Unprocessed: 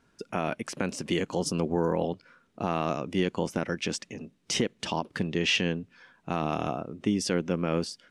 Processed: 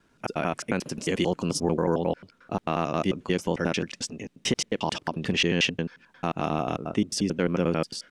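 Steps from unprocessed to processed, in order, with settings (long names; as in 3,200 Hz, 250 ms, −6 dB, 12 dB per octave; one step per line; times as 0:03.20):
slices reordered back to front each 89 ms, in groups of 2
level +2.5 dB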